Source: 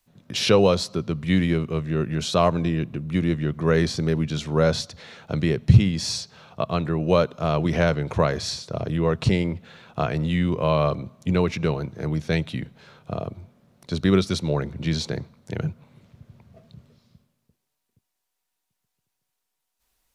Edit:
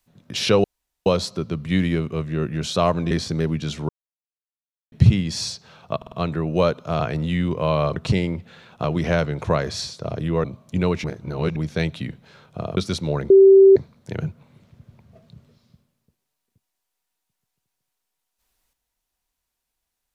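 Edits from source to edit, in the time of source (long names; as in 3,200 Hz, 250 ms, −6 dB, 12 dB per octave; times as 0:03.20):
0:00.64: splice in room tone 0.42 s
0:02.69–0:03.79: remove
0:04.57–0:05.60: silence
0:06.65: stutter 0.05 s, 4 plays
0:07.53–0:09.13: swap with 0:10.01–0:10.97
0:11.57–0:12.09: reverse
0:13.30–0:14.18: remove
0:14.71–0:15.17: beep over 388 Hz −6.5 dBFS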